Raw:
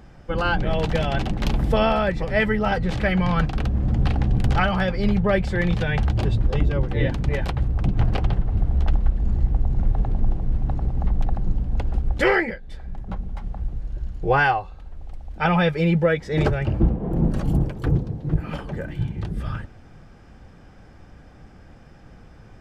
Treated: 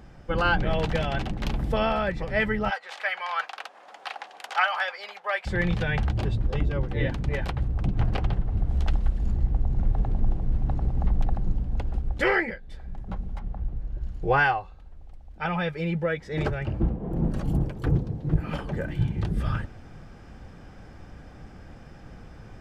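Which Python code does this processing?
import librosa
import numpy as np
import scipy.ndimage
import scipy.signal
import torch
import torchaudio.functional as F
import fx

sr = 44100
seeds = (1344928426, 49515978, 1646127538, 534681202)

y = fx.highpass(x, sr, hz=720.0, slope=24, at=(2.69, 5.45), fade=0.02)
y = fx.high_shelf(y, sr, hz=3100.0, db=10.0, at=(8.69, 9.32))
y = fx.lowpass(y, sr, hz=2300.0, slope=6, at=(13.39, 14.02))
y = fx.dynamic_eq(y, sr, hz=1700.0, q=0.7, threshold_db=-34.0, ratio=4.0, max_db=3)
y = fx.rider(y, sr, range_db=10, speed_s=2.0)
y = y * librosa.db_to_amplitude(-5.0)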